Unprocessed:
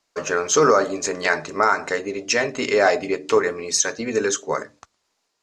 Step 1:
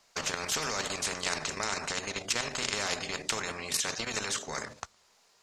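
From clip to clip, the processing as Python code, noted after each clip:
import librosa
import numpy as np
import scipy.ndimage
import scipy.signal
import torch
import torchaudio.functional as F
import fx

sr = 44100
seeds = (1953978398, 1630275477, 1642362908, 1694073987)

y = fx.peak_eq(x, sr, hz=300.0, db=-12.0, octaves=0.32)
y = fx.level_steps(y, sr, step_db=10)
y = fx.spectral_comp(y, sr, ratio=4.0)
y = y * librosa.db_to_amplitude(-5.5)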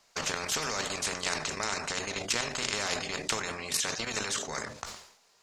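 y = fx.sustainer(x, sr, db_per_s=83.0)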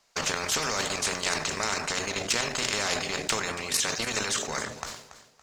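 y = fx.leveller(x, sr, passes=1)
y = fx.echo_feedback(y, sr, ms=282, feedback_pct=30, wet_db=-14.5)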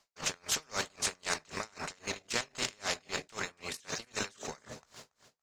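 y = x * 10.0 ** (-32 * (0.5 - 0.5 * np.cos(2.0 * np.pi * 3.8 * np.arange(len(x)) / sr)) / 20.0)
y = y * librosa.db_to_amplitude(-2.5)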